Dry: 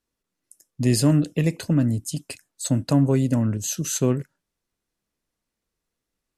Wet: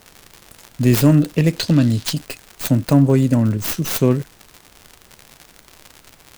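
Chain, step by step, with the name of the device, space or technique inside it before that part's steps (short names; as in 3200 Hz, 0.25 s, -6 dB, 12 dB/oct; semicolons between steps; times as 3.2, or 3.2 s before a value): record under a worn stylus (tracing distortion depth 0.37 ms; crackle 110/s -31 dBFS; pink noise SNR 32 dB); 1.58–2.13 bell 4100 Hz +12 dB 1.4 oct; gain +5.5 dB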